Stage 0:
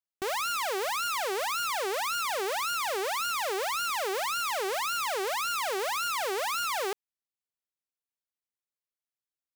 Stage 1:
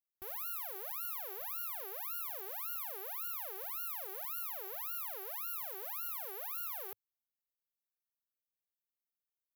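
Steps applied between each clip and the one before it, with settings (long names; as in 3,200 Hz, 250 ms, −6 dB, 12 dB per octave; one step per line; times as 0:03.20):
drawn EQ curve 100 Hz 0 dB, 180 Hz −16 dB, 520 Hz −9 dB, 8,700 Hz −14 dB, 12,000 Hz +11 dB
level −8.5 dB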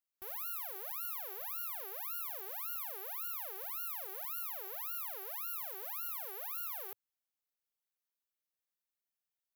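low-shelf EQ 310 Hz −6.5 dB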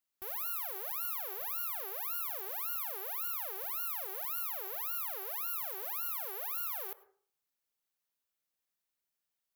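dense smooth reverb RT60 0.51 s, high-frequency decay 0.3×, pre-delay 85 ms, DRR 16 dB
level +3.5 dB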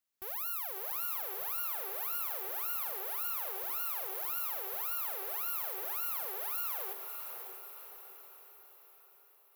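feedback delay with all-pass diffusion 587 ms, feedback 51%, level −6.5 dB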